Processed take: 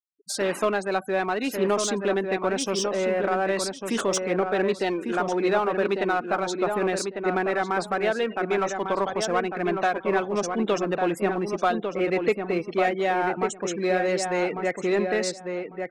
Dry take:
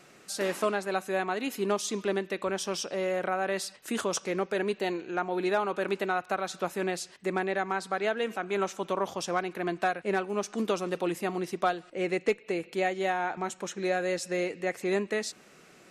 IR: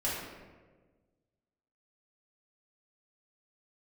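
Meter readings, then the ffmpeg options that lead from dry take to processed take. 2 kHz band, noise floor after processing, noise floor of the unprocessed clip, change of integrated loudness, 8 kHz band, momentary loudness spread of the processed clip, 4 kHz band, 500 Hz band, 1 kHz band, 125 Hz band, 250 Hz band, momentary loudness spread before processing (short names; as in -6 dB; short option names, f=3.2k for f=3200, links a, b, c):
+4.5 dB, -42 dBFS, -56 dBFS, +5.5 dB, +5.0 dB, 3 LU, +4.5 dB, +6.0 dB, +5.5 dB, +5.5 dB, +6.0 dB, 4 LU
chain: -filter_complex "[0:a]afftfilt=real='re*gte(hypot(re,im),0.01)':imag='im*gte(hypot(re,im),0.01)':win_size=1024:overlap=0.75,asplit=2[a][b];[b]asoftclip=type=hard:threshold=-31dB,volume=-6dB[c];[a][c]amix=inputs=2:normalize=0,asplit=2[d][e];[e]adelay=1149,lowpass=f=2k:p=1,volume=-5dB,asplit=2[f][g];[g]adelay=1149,lowpass=f=2k:p=1,volume=0.18,asplit=2[h][i];[i]adelay=1149,lowpass=f=2k:p=1,volume=0.18[j];[d][f][h][j]amix=inputs=4:normalize=0,volume=2.5dB"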